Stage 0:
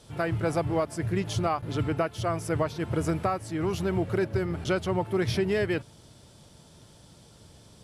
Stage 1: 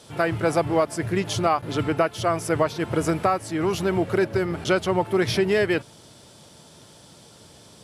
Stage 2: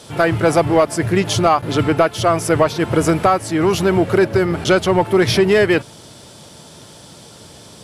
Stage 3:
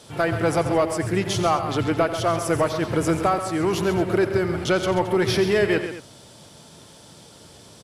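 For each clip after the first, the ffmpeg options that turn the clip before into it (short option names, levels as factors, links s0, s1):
-af "highpass=f=240:p=1,volume=2.24"
-af "asoftclip=type=tanh:threshold=0.282,volume=2.66"
-af "aecho=1:1:88|134|219:0.224|0.316|0.168,volume=0.447"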